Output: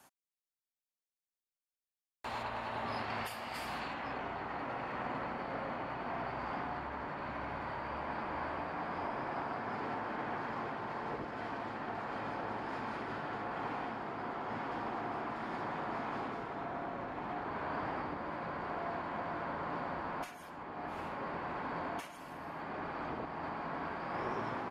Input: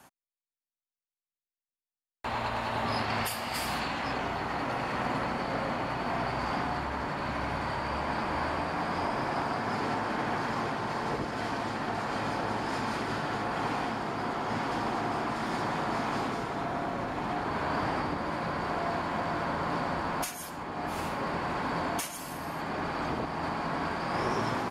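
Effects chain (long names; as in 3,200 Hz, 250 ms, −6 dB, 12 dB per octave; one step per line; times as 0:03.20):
bass and treble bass −4 dB, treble +3 dB, from 0:02.42 treble −8 dB, from 0:03.93 treble −15 dB
level −7 dB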